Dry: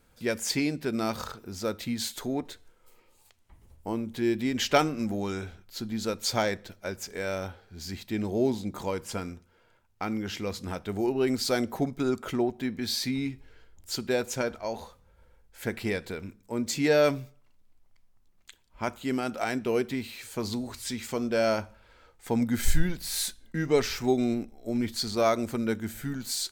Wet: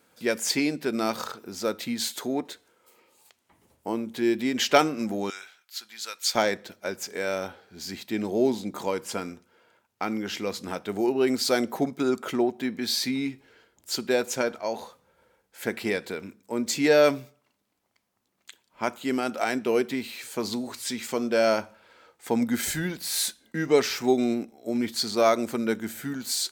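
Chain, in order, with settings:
high-pass filter 220 Hz 12 dB per octave, from 0:05.30 1,500 Hz, from 0:06.35 210 Hz
level +3.5 dB

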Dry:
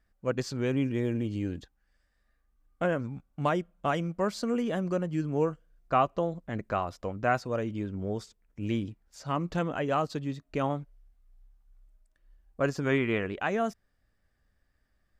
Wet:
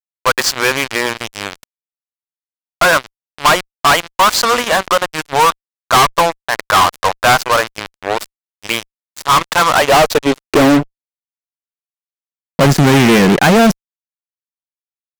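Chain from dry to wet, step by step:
high-pass filter sweep 990 Hz → 160 Hz, 0:09.73–0:11.12
harmonic generator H 2 −8 dB, 3 −38 dB, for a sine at −8.5 dBFS
fuzz pedal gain 41 dB, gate −42 dBFS
level +6.5 dB

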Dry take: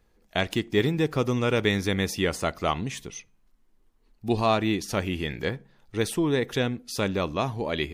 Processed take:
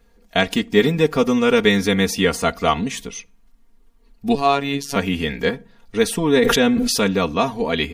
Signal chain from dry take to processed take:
comb filter 4.3 ms, depth 83%
0:04.35–0:04.96: phases set to zero 140 Hz
0:06.19–0:07.01: level that may fall only so fast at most 22 dB per second
level +5.5 dB

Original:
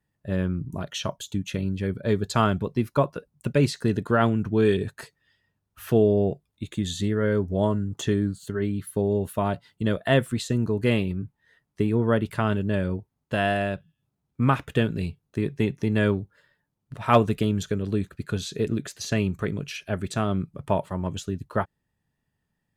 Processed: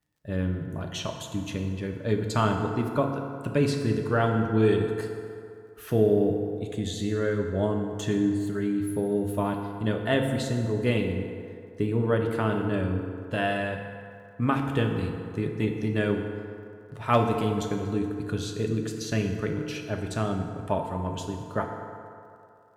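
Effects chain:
surface crackle 52 per second −55 dBFS
feedback delay network reverb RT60 2.6 s, low-frequency decay 0.75×, high-frequency decay 0.5×, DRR 2.5 dB
level −4 dB

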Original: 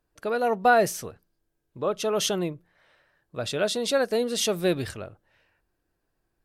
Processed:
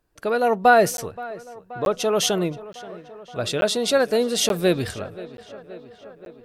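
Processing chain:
tape delay 526 ms, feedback 78%, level −17.5 dB, low-pass 3,200 Hz
regular buffer underruns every 0.88 s, samples 512, zero, from 0:00.97
level +4.5 dB

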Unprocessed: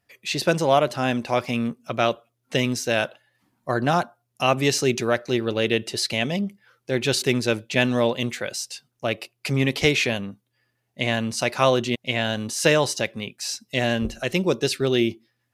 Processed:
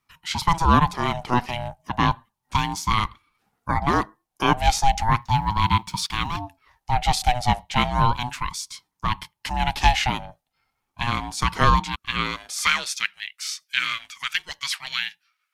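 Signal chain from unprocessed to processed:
0:05.21–0:06.37: mu-law and A-law mismatch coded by A
high-pass filter sweep 400 Hz → 2,000 Hz, 0:11.69–0:12.89
ring modulator whose carrier an LFO sweeps 460 Hz, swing 20%, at 0.34 Hz
level +1 dB

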